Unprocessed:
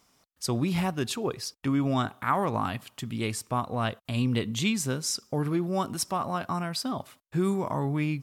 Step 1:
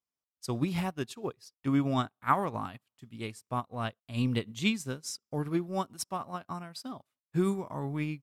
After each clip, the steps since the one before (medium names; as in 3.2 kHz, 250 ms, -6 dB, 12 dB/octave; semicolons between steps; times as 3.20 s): upward expansion 2.5:1, over -45 dBFS; trim +2 dB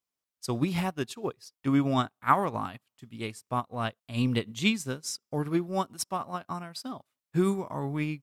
bass shelf 170 Hz -3 dB; trim +3.5 dB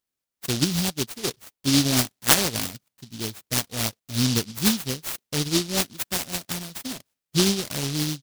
delay time shaken by noise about 4.3 kHz, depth 0.34 ms; trim +4.5 dB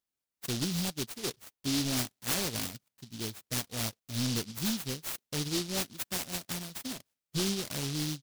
saturation -21.5 dBFS, distortion -8 dB; trim -5 dB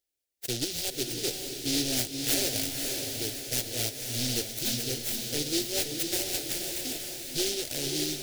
static phaser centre 450 Hz, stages 4; echo that smears into a reverb 534 ms, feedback 52%, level -4 dB; trim +4.5 dB